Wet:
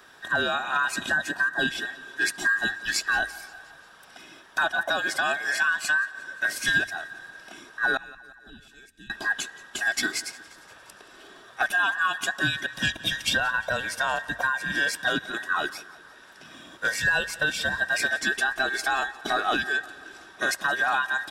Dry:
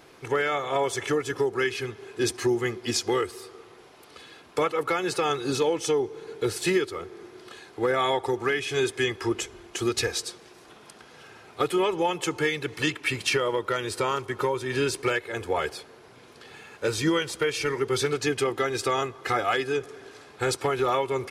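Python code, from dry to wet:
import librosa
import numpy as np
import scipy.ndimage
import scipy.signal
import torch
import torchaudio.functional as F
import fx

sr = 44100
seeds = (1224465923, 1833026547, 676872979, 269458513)

p1 = fx.band_invert(x, sr, width_hz=2000)
p2 = fx.tone_stack(p1, sr, knobs='10-0-1', at=(7.97, 9.1))
p3 = fx.hum_notches(p2, sr, base_hz=50, count=2)
y = p3 + fx.echo_feedback(p3, sr, ms=176, feedback_pct=60, wet_db=-21.0, dry=0)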